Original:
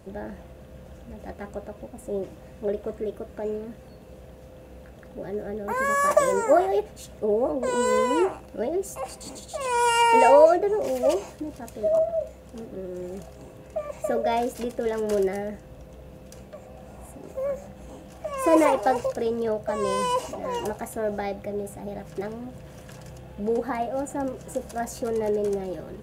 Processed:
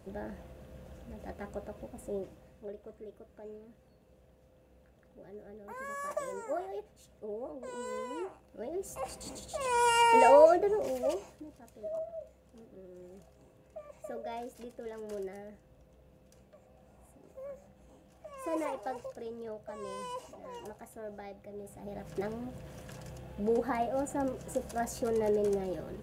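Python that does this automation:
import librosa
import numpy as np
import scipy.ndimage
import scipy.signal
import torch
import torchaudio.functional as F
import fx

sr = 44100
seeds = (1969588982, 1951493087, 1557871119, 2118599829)

y = fx.gain(x, sr, db=fx.line((2.03, -5.5), (2.74, -17.0), (8.43, -17.0), (9.04, -5.0), (10.69, -5.0), (11.59, -16.0), (21.47, -16.0), (22.13, -4.0)))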